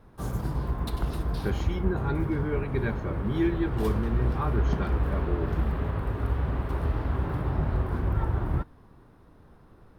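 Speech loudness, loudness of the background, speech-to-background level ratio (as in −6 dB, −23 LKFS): −32.0 LKFS, −30.0 LKFS, −2.0 dB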